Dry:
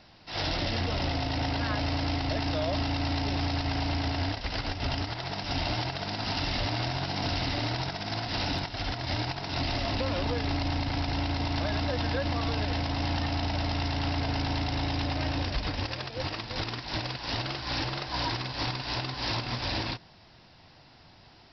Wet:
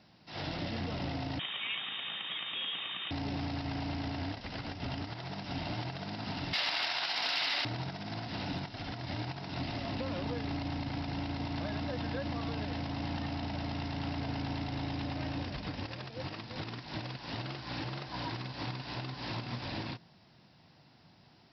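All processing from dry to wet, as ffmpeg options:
ffmpeg -i in.wav -filter_complex "[0:a]asettb=1/sr,asplit=3[link_01][link_02][link_03];[link_01]atrim=end=1.394[link_04];[link_02]atrim=start=1.39:end=3.11,asetpts=PTS-STARTPTS,afade=type=in:duration=0.004:curve=qsin,afade=type=out:start_time=1.716:duration=0.004:curve=qsin,highpass=200,equalizer=frequency=1200:width=1.2:gain=8.5,lowpass=frequency=3300:width_type=q:width=0.5098,lowpass=frequency=3300:width_type=q:width=0.6013,lowpass=frequency=3300:width_type=q:width=0.9,lowpass=frequency=3300:width_type=q:width=2.563,afreqshift=-3900[link_05];[link_03]atrim=start=3.106[link_06];[link_04][link_05]acrossfade=duration=0.004:curve1=hsin:curve2=qsin[link_07];[link_07][link_06]acrossfade=duration=0.004:curve1=qsin:curve2=hsin,asettb=1/sr,asplit=3[link_08][link_09][link_10];[link_08]atrim=end=6.534[link_11];[link_09]atrim=start=6.53:end=7.65,asetpts=PTS-STARTPTS,afade=type=in:duration=0.004:curve=qsin,afade=type=out:start_time=1.116:duration=0.004:curve=qsin,highpass=990,highshelf=frequency=2400:gain=10.5,aeval=exprs='0.211*sin(PI/2*1.58*val(0)/0.211)':channel_layout=same[link_12];[link_10]atrim=start=7.646[link_13];[link_11][link_12]acrossfade=duration=0.004:curve1=hsin:curve2=qsin[link_14];[link_14][link_13]acrossfade=duration=0.004:curve1=qsin:curve2=hsin,acrossover=split=4400[link_15][link_16];[link_16]acompressor=threshold=-47dB:ratio=4:attack=1:release=60[link_17];[link_15][link_17]amix=inputs=2:normalize=0,highpass=frequency=120:poles=1,equalizer=frequency=170:width=0.94:gain=9,volume=-8dB" out.wav

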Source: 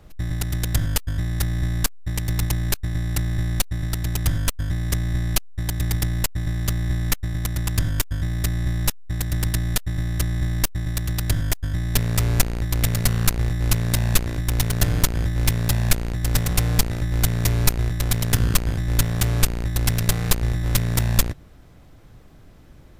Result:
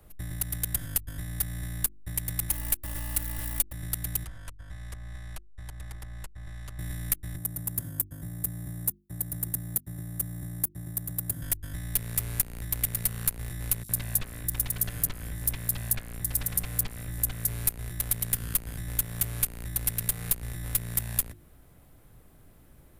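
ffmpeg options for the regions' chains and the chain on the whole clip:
ffmpeg -i in.wav -filter_complex "[0:a]asettb=1/sr,asplit=3[link_01][link_02][link_03];[link_01]atrim=end=2.494[link_04];[link_02]atrim=start=2.49:end=3.73,asetpts=PTS-STARTPTS,afade=type=in:duration=0.004:curve=qsin,afade=type=out:start_time=1.236:duration=0.004:curve=qsin,acrusher=bits=3:mode=log:mix=0:aa=0.000001,aecho=1:1:3.5:0.79,atrim=end_sample=54684[link_05];[link_03]atrim=start=3.726[link_06];[link_04][link_05]acrossfade=duration=0.004:curve1=hsin:curve2=qsin[link_07];[link_07][link_06]acrossfade=duration=0.004:curve1=qsin:curve2=hsin,asettb=1/sr,asplit=3[link_08][link_09][link_10];[link_08]atrim=end=4.244[link_11];[link_09]atrim=start=4.24:end=6.79,asetpts=PTS-STARTPTS,afade=type=in:duration=0.004:curve=qsin,afade=type=out:start_time=2.546:duration=0.004:curve=qsin,lowpass=6200,equalizer=frequency=250:width=0.49:gain=-14,acrossover=split=330|1500[link_12][link_13][link_14];[link_12]acompressor=threshold=-30dB:ratio=4[link_15];[link_13]acompressor=threshold=-42dB:ratio=4[link_16];[link_14]acompressor=threshold=-47dB:ratio=4[link_17];[link_15][link_16][link_17]amix=inputs=3:normalize=0[link_18];[link_10]atrim=start=6.786[link_19];[link_11][link_18]acrossfade=duration=0.004:curve1=hsin:curve2=qsin[link_20];[link_20][link_19]acrossfade=duration=0.004:curve1=qsin:curve2=hsin,asettb=1/sr,asplit=3[link_21][link_22][link_23];[link_21]atrim=end=7.364[link_24];[link_22]atrim=start=7.36:end=11.42,asetpts=PTS-STARTPTS,afade=type=in:duration=0.004:curve=qsin,afade=type=out:start_time=4.056:duration=0.004:curve=qsin,highpass=120,equalizer=frequency=2900:width_type=o:width=2.6:gain=-13,bandreject=frequency=5000:width=25[link_25];[link_23]atrim=start=11.416[link_26];[link_24][link_25]acrossfade=duration=0.004:curve1=hsin:curve2=qsin[link_27];[link_27][link_26]acrossfade=duration=0.004:curve1=qsin:curve2=hsin,asettb=1/sr,asplit=3[link_28][link_29][link_30];[link_28]atrim=end=13.834[link_31];[link_29]atrim=start=13.83:end=17.48,asetpts=PTS-STARTPTS,afade=type=in:duration=0.004:curve=qsin,afade=type=out:start_time=3.646:duration=0.004:curve=qsin,bandreject=frequency=67.1:width_type=h:width=4,bandreject=frequency=134.2:width_type=h:width=4,bandreject=frequency=201.3:width_type=h:width=4,bandreject=frequency=268.4:width_type=h:width=4,bandreject=frequency=335.5:width_type=h:width=4,bandreject=frequency=402.6:width_type=h:width=4,bandreject=frequency=469.7:width_type=h:width=4,bandreject=frequency=536.8:width_type=h:width=4,bandreject=frequency=603.9:width_type=h:width=4,bandreject=frequency=671:width_type=h:width=4,bandreject=frequency=738.1:width_type=h:width=4,bandreject=frequency=805.2:width_type=h:width=4,bandreject=frequency=872.3:width_type=h:width=4,bandreject=frequency=939.4:width_type=h:width=4,bandreject=frequency=1006.5:width_type=h:width=4,bandreject=frequency=1073.6:width_type=h:width=4,bandreject=frequency=1140.7:width_type=h:width=4,bandreject=frequency=1207.8:width_type=h:width=4,bandreject=frequency=1274.9:width_type=h:width=4,bandreject=frequency=1342:width_type=h:width=4,bandreject=frequency=1409.1:width_type=h:width=4,bandreject=frequency=1476.2:width_type=h:width=4,bandreject=frequency=1543.3:width_type=h:width=4,bandreject=frequency=1610.4:width_type=h:width=4,bandreject=frequency=1677.5:width_type=h:width=4,bandreject=frequency=1744.6:width_type=h:width=4,bandreject=frequency=1811.7:width_type=h:width=4,bandreject=frequency=1878.8:width_type=h:width=4,bandreject=frequency=1945.9:width_type=h:width=4,bandreject=frequency=2013:width_type=h:width=4,bandreject=frequency=2080.1:width_type=h:width=4,bandreject=frequency=2147.2:width_type=h:width=4,acrossover=split=4500[link_32][link_33];[link_32]adelay=60[link_34];[link_34][link_33]amix=inputs=2:normalize=0,atrim=end_sample=160965[link_35];[link_30]atrim=start=17.476[link_36];[link_31][link_35]acrossfade=duration=0.004:curve1=hsin:curve2=qsin[link_37];[link_37][link_36]acrossfade=duration=0.004:curve1=qsin:curve2=hsin,highshelf=frequency=7900:width_type=q:width=1.5:gain=11,bandreject=frequency=50:width_type=h:width=6,bandreject=frequency=100:width_type=h:width=6,bandreject=frequency=150:width_type=h:width=6,bandreject=frequency=200:width_type=h:width=6,bandreject=frequency=250:width_type=h:width=6,bandreject=frequency=300:width_type=h:width=6,bandreject=frequency=350:width_type=h:width=6,acrossover=split=220|1400[link_38][link_39][link_40];[link_38]acompressor=threshold=-27dB:ratio=4[link_41];[link_39]acompressor=threshold=-41dB:ratio=4[link_42];[link_40]acompressor=threshold=-17dB:ratio=4[link_43];[link_41][link_42][link_43]amix=inputs=3:normalize=0,volume=-7dB" out.wav

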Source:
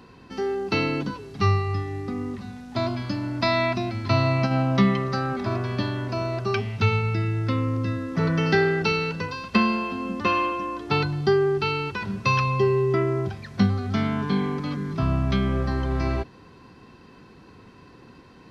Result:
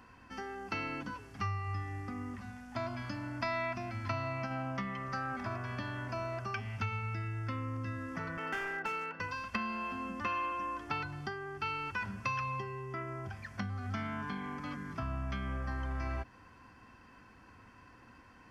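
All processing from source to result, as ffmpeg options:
ffmpeg -i in.wav -filter_complex "[0:a]asettb=1/sr,asplit=3[link_01][link_02][link_03];[link_01]atrim=end=8.374[link_04];[link_02]atrim=start=8.37:end=9.2,asetpts=PTS-STARTPTS,afade=type=in:duration=0.004:curve=qsin,afade=type=out:start_time=0.826:duration=0.004:curve=qsin,highpass=260,lowpass=2200,volume=21.5dB,asoftclip=hard,volume=-21.5dB[link_05];[link_03]atrim=start=9.196[link_06];[link_04][link_05]acrossfade=duration=0.004:curve1=hsin:curve2=qsin[link_07];[link_07][link_06]acrossfade=duration=0.004:curve1=qsin:curve2=hsin,bandreject=frequency=3900:width=7.3,acompressor=threshold=-26dB:ratio=4,equalizer=frequency=160:width_type=o:width=0.67:gain=-11,equalizer=frequency=400:width_type=o:width=0.67:gain=-12,equalizer=frequency=1600:width_type=o:width=0.67:gain=4,equalizer=frequency=4000:width_type=o:width=0.67:gain=-7,volume=-5dB" out.wav

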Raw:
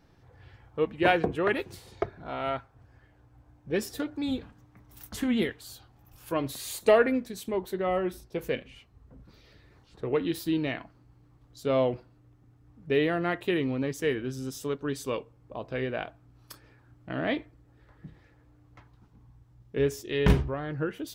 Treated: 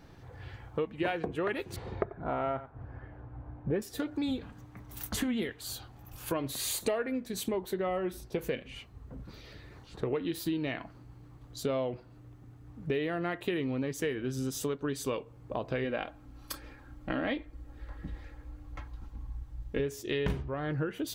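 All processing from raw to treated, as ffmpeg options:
ffmpeg -i in.wav -filter_complex "[0:a]asettb=1/sr,asplit=3[link_01][link_02][link_03];[link_01]atrim=end=1.764[link_04];[link_02]atrim=start=1.76:end=3.82,asetpts=PTS-STARTPTS,afade=type=in:duration=0.004:curve=qsin,afade=type=out:start_time=2.056:duration=0.004:curve=qsin,lowpass=1500,acontrast=36,aecho=1:1:89:0.141,atrim=end_sample=90846[link_05];[link_03]atrim=start=3.816[link_06];[link_04][link_05]acrossfade=duration=0.004:curve1=hsin:curve2=qsin[link_07];[link_07][link_06]acrossfade=duration=0.004:curve1=qsin:curve2=hsin,asettb=1/sr,asplit=3[link_08][link_09][link_10];[link_08]atrim=end=15.844[link_11];[link_09]atrim=start=15.84:end=19.8,asetpts=PTS-STARTPTS,afade=type=in:duration=0.004:curve=qsin,afade=type=out:start_time=3.956:duration=0.004:curve=qsin,aecho=1:1:3.7:0.49,atrim=end_sample=174636,asubboost=boost=8.5:cutoff=62[link_12];[link_10]atrim=start=19.796[link_13];[link_11][link_12]acrossfade=duration=0.004:curve1=hsin:curve2=qsin[link_14];[link_14][link_13]acrossfade=duration=0.004:curve1=qsin:curve2=hsin,bandreject=frequency=5300:width=20,acompressor=threshold=-37dB:ratio=6,volume=7dB" out.wav

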